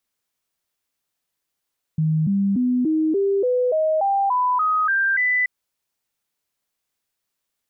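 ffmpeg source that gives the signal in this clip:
-f lavfi -i "aevalsrc='0.15*clip(min(mod(t,0.29),0.29-mod(t,0.29))/0.005,0,1)*sin(2*PI*157*pow(2,floor(t/0.29)/3)*mod(t,0.29))':d=3.48:s=44100"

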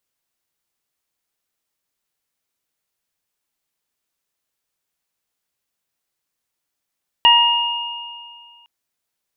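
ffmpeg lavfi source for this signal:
-f lavfi -i "aevalsrc='0.282*pow(10,-3*t/1.97)*sin(2*PI*947*t)+0.0891*pow(10,-3*t/0.67)*sin(2*PI*1894*t)+0.376*pow(10,-3*t/2.1)*sin(2*PI*2841*t)':d=1.41:s=44100"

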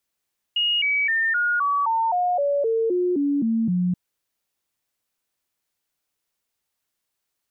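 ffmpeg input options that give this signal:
-f lavfi -i "aevalsrc='0.119*clip(min(mod(t,0.26),0.26-mod(t,0.26))/0.005,0,1)*sin(2*PI*2870*pow(2,-floor(t/0.26)/3)*mod(t,0.26))':d=3.38:s=44100"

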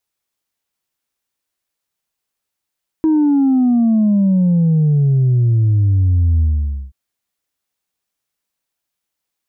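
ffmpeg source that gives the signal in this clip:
-f lavfi -i "aevalsrc='0.299*clip((3.88-t)/0.51,0,1)*tanh(1.12*sin(2*PI*320*3.88/log(65/320)*(exp(log(65/320)*t/3.88)-1)))/tanh(1.12)':d=3.88:s=44100"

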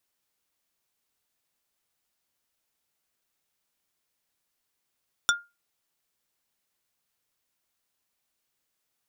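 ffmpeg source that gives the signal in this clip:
-f lavfi -i "aevalsrc='0.15*pow(10,-3*t/0.24)*sin(2*PI*1410*t)+0.133*pow(10,-3*t/0.08)*sin(2*PI*3525*t)+0.119*pow(10,-3*t/0.045)*sin(2*PI*5640*t)+0.106*pow(10,-3*t/0.035)*sin(2*PI*7050*t)+0.0944*pow(10,-3*t/0.025)*sin(2*PI*9165*t)':d=0.45:s=44100"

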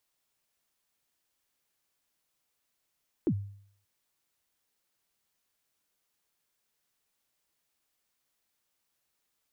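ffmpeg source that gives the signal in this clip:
-f lavfi -i "aevalsrc='0.0891*pow(10,-3*t/0.61)*sin(2*PI*(390*0.067/log(100/390)*(exp(log(100/390)*min(t,0.067)/0.067)-1)+100*max(t-0.067,0)))':d=0.58:s=44100"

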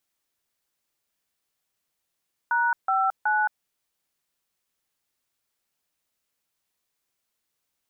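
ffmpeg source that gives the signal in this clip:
-f lavfi -i "aevalsrc='0.075*clip(min(mod(t,0.372),0.22-mod(t,0.372))/0.002,0,1)*(eq(floor(t/0.372),0)*(sin(2*PI*941*mod(t,0.372))+sin(2*PI*1477*mod(t,0.372)))+eq(floor(t/0.372),1)*(sin(2*PI*770*mod(t,0.372))+sin(2*PI*1336*mod(t,0.372)))+eq(floor(t/0.372),2)*(sin(2*PI*852*mod(t,0.372))+sin(2*PI*1477*mod(t,0.372))))':d=1.116:s=44100"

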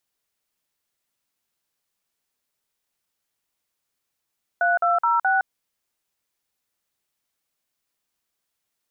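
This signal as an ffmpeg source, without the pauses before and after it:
-f lavfi -i "aevalsrc='0.106*clip(min(mod(t,0.212),0.164-mod(t,0.212))/0.002,0,1)*(eq(floor(t/0.212),0)*(sin(2*PI*697*mod(t,0.212))+sin(2*PI*1477*mod(t,0.212)))+eq(floor(t/0.212),1)*(sin(2*PI*697*mod(t,0.212))+sin(2*PI*1336*mod(t,0.212)))+eq(floor(t/0.212),2)*(sin(2*PI*941*mod(t,0.212))+sin(2*PI*1336*mod(t,0.212)))+eq(floor(t/0.212),3)*(sin(2*PI*770*mod(t,0.212))+sin(2*PI*1477*mod(t,0.212))))':d=0.848:s=44100"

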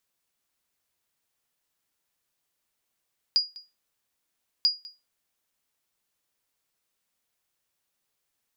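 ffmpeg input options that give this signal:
-f lavfi -i "aevalsrc='0.2*(sin(2*PI*4870*mod(t,1.29))*exp(-6.91*mod(t,1.29)/0.24)+0.0841*sin(2*PI*4870*max(mod(t,1.29)-0.2,0))*exp(-6.91*max(mod(t,1.29)-0.2,0)/0.24))':d=2.58:s=44100"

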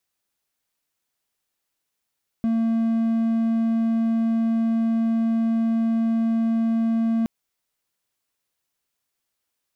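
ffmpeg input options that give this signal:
-f lavfi -i "aevalsrc='0.15*(1-4*abs(mod(227*t+0.25,1)-0.5))':d=4.82:s=44100"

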